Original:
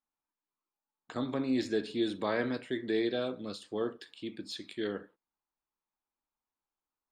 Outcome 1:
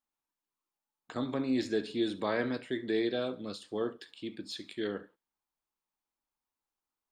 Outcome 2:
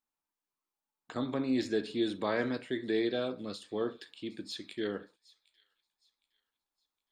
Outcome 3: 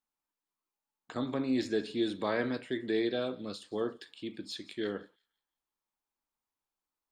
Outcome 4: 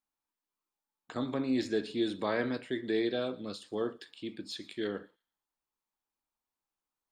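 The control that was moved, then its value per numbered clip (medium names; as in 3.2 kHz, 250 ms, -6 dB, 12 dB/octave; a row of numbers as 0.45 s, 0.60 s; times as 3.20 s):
feedback echo behind a high-pass, time: 70 ms, 764 ms, 174 ms, 117 ms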